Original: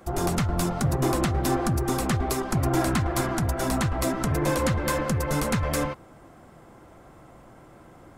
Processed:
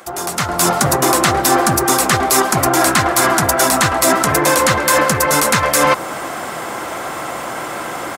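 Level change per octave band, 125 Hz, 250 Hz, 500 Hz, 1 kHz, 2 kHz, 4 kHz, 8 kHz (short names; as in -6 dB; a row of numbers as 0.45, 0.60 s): +2.0, +6.5, +11.5, +15.5, +16.5, +16.5, +18.0 dB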